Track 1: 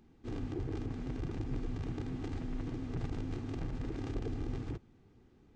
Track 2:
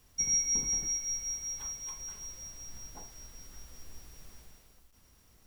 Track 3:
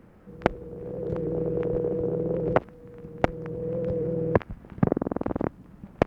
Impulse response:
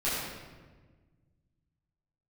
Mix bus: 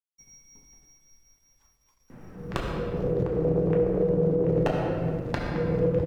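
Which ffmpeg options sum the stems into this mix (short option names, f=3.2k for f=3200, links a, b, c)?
-filter_complex "[0:a]adelay=2250,volume=-6dB[a];[1:a]bass=f=250:g=-1,treble=f=4k:g=-8,aeval=exprs='sgn(val(0))*max(abs(val(0))-0.00251,0)':c=same,volume=-16.5dB,asplit=2[b][c];[c]volume=-16.5dB[d];[2:a]aeval=exprs='0.316*(abs(mod(val(0)/0.316+3,4)-2)-1)':c=same,adelay=2100,volume=1.5dB,asplit=2[e][f];[f]volume=-6.5dB[g];[3:a]atrim=start_sample=2205[h];[d][g]amix=inputs=2:normalize=0[i];[i][h]afir=irnorm=-1:irlink=0[j];[a][b][e][j]amix=inputs=4:normalize=0,alimiter=limit=-14.5dB:level=0:latency=1:release=415"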